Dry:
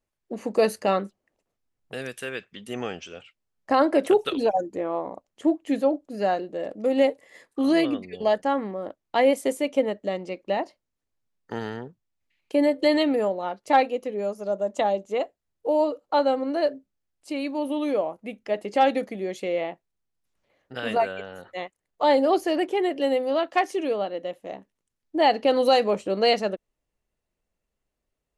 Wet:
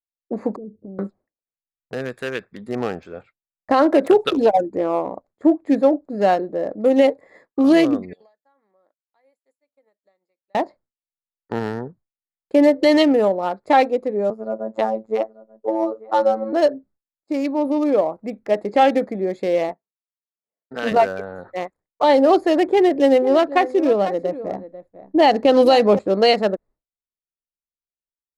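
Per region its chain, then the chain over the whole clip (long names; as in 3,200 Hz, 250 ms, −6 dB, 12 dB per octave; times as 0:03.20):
0:00.56–0:00.99: inverse Chebyshev band-stop filter 1,700–9,800 Hz, stop band 80 dB + downward compressor 2 to 1, threshold −50 dBFS
0:08.13–0:10.55: first difference + downward compressor 8 to 1, threshold −53 dBFS
0:14.30–0:16.53: low-pass filter 2,500 Hz 6 dB per octave + phases set to zero 110 Hz + single-tap delay 886 ms −20 dB
0:19.69–0:20.92: high-pass filter 150 Hz + comb filter 4.5 ms, depth 42% + transient designer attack −3 dB, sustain −12 dB
0:22.66–0:25.99: low-shelf EQ 230 Hz +7.5 dB + single-tap delay 493 ms −14.5 dB
whole clip: adaptive Wiener filter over 15 samples; downward expander −50 dBFS; boost into a limiter +12 dB; level −4.5 dB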